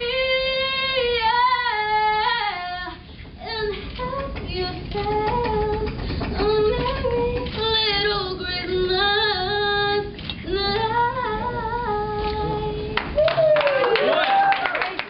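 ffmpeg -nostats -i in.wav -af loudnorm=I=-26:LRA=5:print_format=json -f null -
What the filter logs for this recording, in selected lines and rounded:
"input_i" : "-21.4",
"input_tp" : "-3.4",
"input_lra" : "5.3",
"input_thresh" : "-31.5",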